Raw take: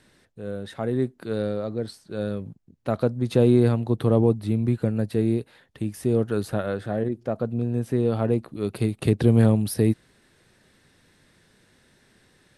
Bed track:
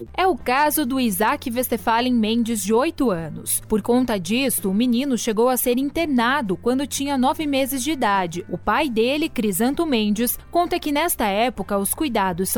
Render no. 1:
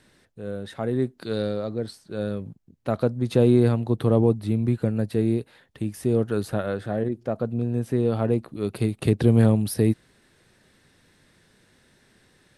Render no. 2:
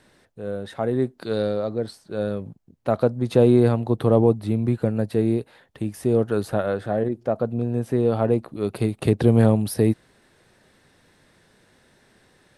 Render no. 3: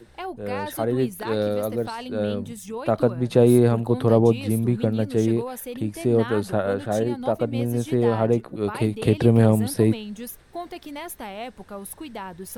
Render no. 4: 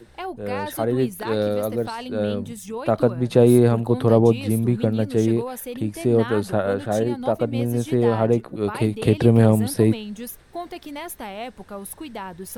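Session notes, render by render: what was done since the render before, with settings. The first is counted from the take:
1.17–1.74 bell 4500 Hz +11.5 dB -> +2.5 dB 1.1 oct
bell 730 Hz +5.5 dB 1.7 oct
add bed track -14.5 dB
gain +1.5 dB

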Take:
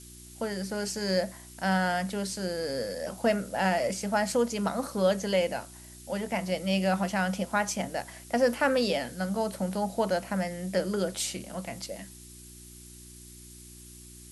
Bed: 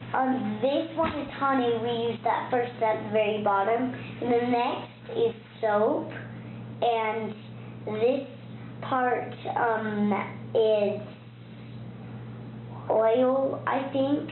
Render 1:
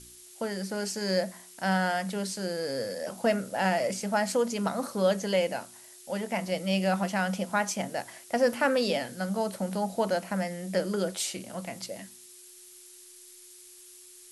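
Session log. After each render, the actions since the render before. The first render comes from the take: de-hum 60 Hz, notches 5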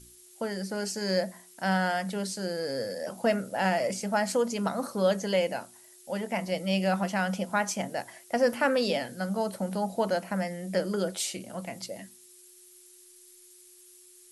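denoiser 6 dB, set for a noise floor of -51 dBFS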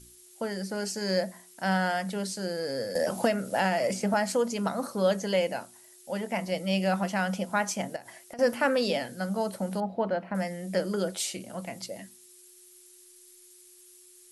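2.95–4.14 three-band squash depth 100%; 7.96–8.39 compressor 16:1, threshold -39 dBFS; 9.8–10.35 air absorption 370 m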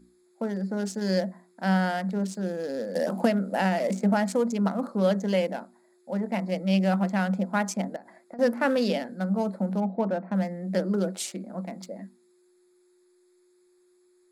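Wiener smoothing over 15 samples; resonant low shelf 150 Hz -9.5 dB, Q 3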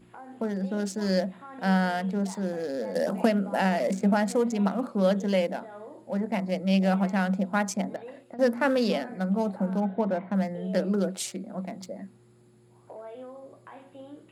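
add bed -20 dB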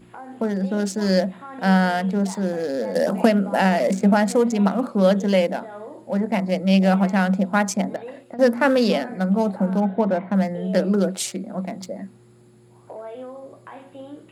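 gain +6.5 dB

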